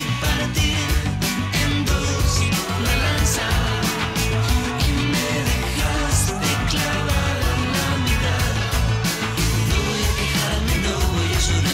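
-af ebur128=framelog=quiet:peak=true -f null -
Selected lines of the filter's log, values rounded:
Integrated loudness:
  I:         -20.3 LUFS
  Threshold: -30.3 LUFS
Loudness range:
  LRA:         0.5 LU
  Threshold: -40.3 LUFS
  LRA low:   -20.5 LUFS
  LRA high:  -20.0 LUFS
True peak:
  Peak:       -6.3 dBFS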